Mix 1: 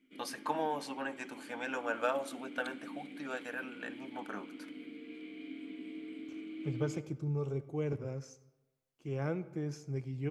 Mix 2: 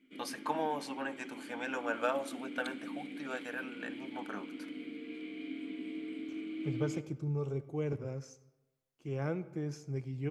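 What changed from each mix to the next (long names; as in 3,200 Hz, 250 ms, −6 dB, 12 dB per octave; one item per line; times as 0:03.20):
background +3.5 dB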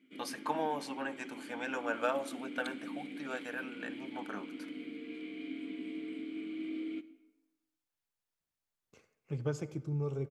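second voice: entry +2.65 s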